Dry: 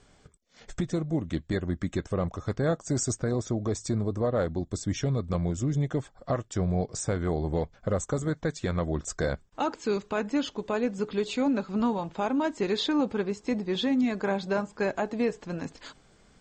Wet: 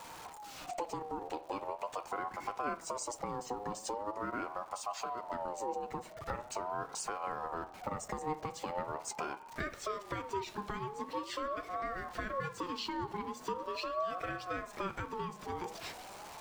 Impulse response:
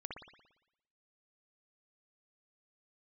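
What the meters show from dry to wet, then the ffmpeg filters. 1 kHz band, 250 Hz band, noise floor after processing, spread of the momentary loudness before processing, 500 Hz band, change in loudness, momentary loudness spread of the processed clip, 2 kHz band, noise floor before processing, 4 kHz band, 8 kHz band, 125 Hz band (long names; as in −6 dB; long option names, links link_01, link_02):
−0.5 dB, −17.5 dB, −51 dBFS, 5 LU, −11.0 dB, −10.5 dB, 4 LU, −6.0 dB, −60 dBFS, −8.5 dB, −7.5 dB, −20.0 dB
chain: -filter_complex "[0:a]aeval=exprs='val(0)+0.5*0.00708*sgn(val(0))':channel_layout=same,acompressor=threshold=-34dB:ratio=6,flanger=delay=3.8:depth=4.2:regen=74:speed=1:shape=triangular,asplit=2[link_01][link_02];[1:a]atrim=start_sample=2205[link_03];[link_02][link_03]afir=irnorm=-1:irlink=0,volume=-9dB[link_04];[link_01][link_04]amix=inputs=2:normalize=0,aeval=exprs='val(0)*sin(2*PI*770*n/s+770*0.2/0.42*sin(2*PI*0.42*n/s))':channel_layout=same,volume=3.5dB"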